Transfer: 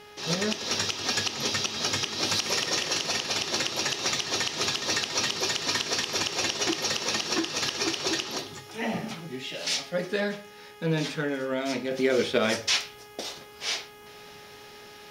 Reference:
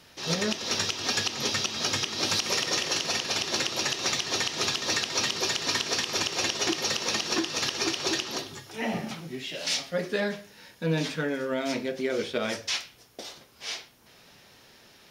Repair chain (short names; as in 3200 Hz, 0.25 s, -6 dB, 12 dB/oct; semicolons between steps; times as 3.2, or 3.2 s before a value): de-hum 416.7 Hz, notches 8; gain correction -5 dB, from 11.91